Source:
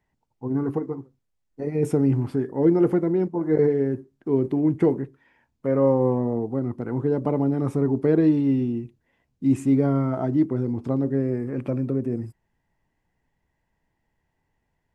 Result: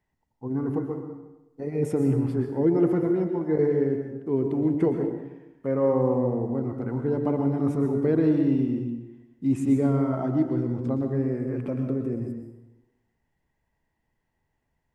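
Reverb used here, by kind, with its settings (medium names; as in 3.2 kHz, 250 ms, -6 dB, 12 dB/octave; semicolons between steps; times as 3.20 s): plate-style reverb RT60 0.98 s, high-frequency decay 0.75×, pre-delay 105 ms, DRR 4.5 dB; trim -3.5 dB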